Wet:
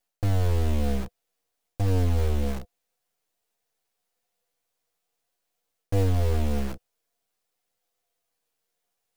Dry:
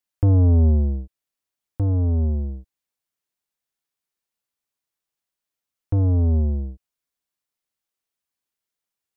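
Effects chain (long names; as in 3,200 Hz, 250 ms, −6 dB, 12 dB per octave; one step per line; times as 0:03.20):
gain on one half-wave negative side −12 dB
dynamic equaliser 190 Hz, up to +4 dB, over −43 dBFS, Q 3.1
reversed playback
downward compressor 8 to 1, threshold −26 dBFS, peak gain reduction 11 dB
reversed playback
floating-point word with a short mantissa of 4 bits
flanger 0.28 Hz, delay 8.9 ms, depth 2.3 ms, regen 0%
hollow resonant body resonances 490/700 Hz, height 13 dB, ringing for 55 ms
in parallel at −3.5 dB: wrap-around overflow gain 40.5 dB
on the sum: level +7 dB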